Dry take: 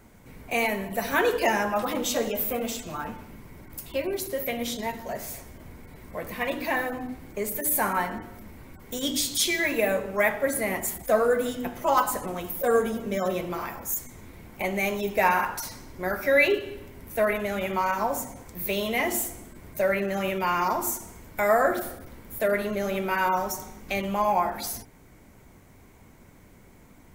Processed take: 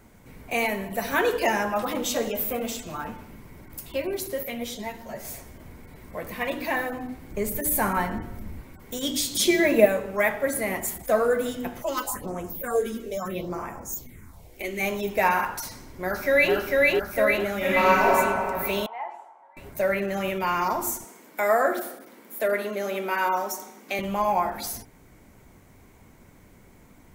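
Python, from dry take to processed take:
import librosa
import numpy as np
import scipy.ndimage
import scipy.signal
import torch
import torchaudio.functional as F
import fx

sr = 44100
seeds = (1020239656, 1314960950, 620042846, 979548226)

y = fx.ensemble(x, sr, at=(4.43, 5.25))
y = fx.low_shelf(y, sr, hz=180.0, db=11.5, at=(7.31, 8.61))
y = fx.small_body(y, sr, hz=(200.0, 360.0, 580.0), ring_ms=30, db=11, at=(9.35, 9.86))
y = fx.phaser_stages(y, sr, stages=4, low_hz=120.0, high_hz=4000.0, hz=fx.line((11.81, 1.4), (14.79, 0.32)), feedback_pct=25, at=(11.81, 14.79), fade=0.02)
y = fx.echo_throw(y, sr, start_s=15.69, length_s=0.85, ms=450, feedback_pct=60, wet_db=-0.5)
y = fx.reverb_throw(y, sr, start_s=17.57, length_s=0.49, rt60_s=2.6, drr_db=-6.0)
y = fx.ladder_bandpass(y, sr, hz=890.0, resonance_pct=80, at=(18.86, 19.57))
y = fx.highpass(y, sr, hz=230.0, slope=24, at=(21.04, 23.99))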